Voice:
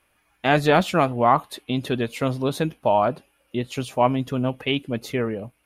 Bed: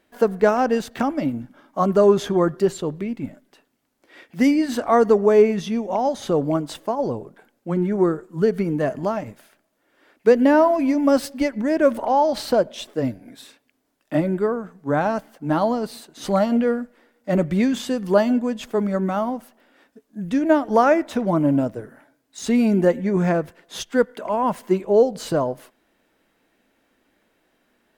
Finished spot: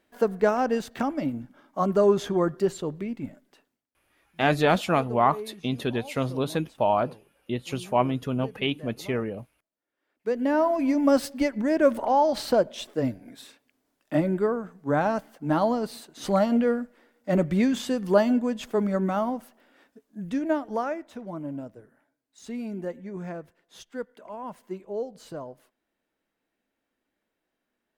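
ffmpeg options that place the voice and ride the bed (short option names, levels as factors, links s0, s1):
-filter_complex "[0:a]adelay=3950,volume=0.668[s0];[1:a]volume=5.31,afade=t=out:st=3.6:d=0.26:silence=0.133352,afade=t=in:st=10.08:d=0.9:silence=0.105925,afade=t=out:st=19.79:d=1.19:silence=0.223872[s1];[s0][s1]amix=inputs=2:normalize=0"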